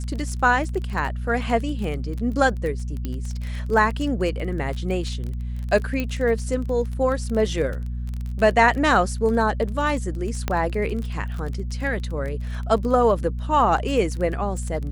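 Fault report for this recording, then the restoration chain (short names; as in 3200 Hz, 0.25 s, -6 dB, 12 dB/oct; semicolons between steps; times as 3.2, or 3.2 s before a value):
crackle 22/s -28 dBFS
hum 60 Hz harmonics 4 -28 dBFS
3.05 pop -15 dBFS
6 pop -13 dBFS
10.48 pop -9 dBFS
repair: de-click; de-hum 60 Hz, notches 4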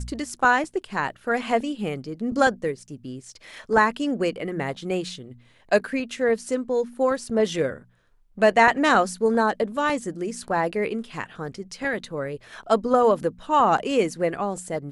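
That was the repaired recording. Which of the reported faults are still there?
6 pop
10.48 pop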